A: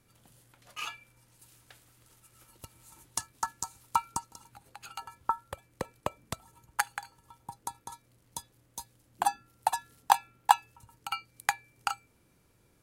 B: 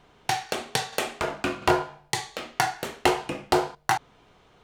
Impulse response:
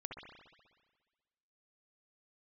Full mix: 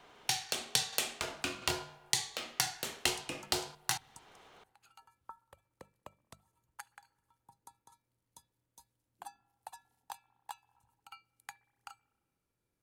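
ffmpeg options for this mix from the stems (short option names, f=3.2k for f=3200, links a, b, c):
-filter_complex "[0:a]volume=-18.5dB,asplit=2[a][b];[b]volume=-22.5dB[c];[1:a]lowshelf=f=260:g=-12,volume=0.5dB,asplit=2[d][e];[e]volume=-23dB[f];[2:a]atrim=start_sample=2205[g];[c][f]amix=inputs=2:normalize=0[h];[h][g]afir=irnorm=-1:irlink=0[i];[a][d][i]amix=inputs=3:normalize=0,bandreject=f=50:t=h:w=6,bandreject=f=100:t=h:w=6,bandreject=f=150:t=h:w=6,bandreject=f=200:t=h:w=6,acrossover=split=210|3000[j][k][l];[k]acompressor=threshold=-44dB:ratio=3[m];[j][m][l]amix=inputs=3:normalize=0"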